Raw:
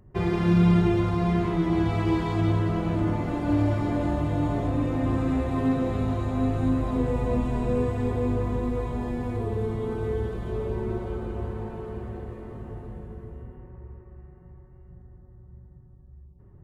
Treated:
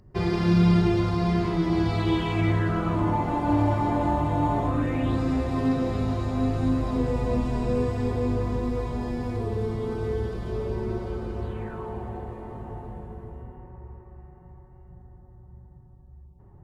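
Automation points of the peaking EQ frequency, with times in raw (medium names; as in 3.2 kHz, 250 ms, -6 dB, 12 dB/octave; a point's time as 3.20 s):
peaking EQ +11.5 dB 0.5 oct
1.89 s 4.8 kHz
3.10 s 910 Hz
4.65 s 910 Hz
5.22 s 5 kHz
11.40 s 5 kHz
11.88 s 830 Hz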